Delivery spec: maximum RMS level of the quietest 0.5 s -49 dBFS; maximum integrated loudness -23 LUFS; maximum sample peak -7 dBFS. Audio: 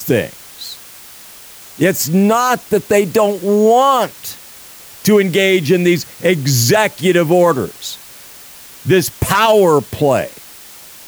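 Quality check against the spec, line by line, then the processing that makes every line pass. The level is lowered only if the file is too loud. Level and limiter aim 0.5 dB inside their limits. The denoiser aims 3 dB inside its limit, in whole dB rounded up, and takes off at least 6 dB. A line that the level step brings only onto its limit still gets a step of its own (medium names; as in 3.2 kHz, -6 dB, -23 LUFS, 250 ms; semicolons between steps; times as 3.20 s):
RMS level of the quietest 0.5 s -37 dBFS: fail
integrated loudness -13.5 LUFS: fail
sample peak -2.0 dBFS: fail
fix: noise reduction 6 dB, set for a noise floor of -37 dBFS; trim -10 dB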